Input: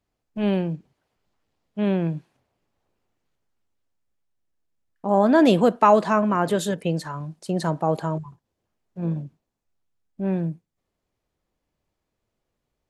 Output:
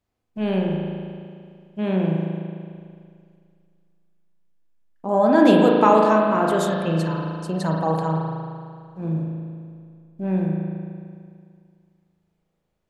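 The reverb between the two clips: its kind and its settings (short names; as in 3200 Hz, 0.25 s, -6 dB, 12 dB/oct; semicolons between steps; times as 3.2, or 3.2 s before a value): spring tank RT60 2.2 s, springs 37 ms, chirp 20 ms, DRR -1 dB; gain -1.5 dB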